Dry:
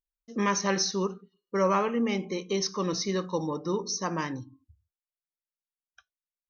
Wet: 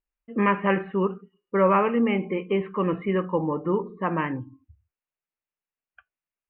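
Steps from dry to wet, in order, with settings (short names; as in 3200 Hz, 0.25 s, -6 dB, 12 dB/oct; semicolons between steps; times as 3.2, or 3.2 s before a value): steep low-pass 2900 Hz 96 dB/oct; gain +5 dB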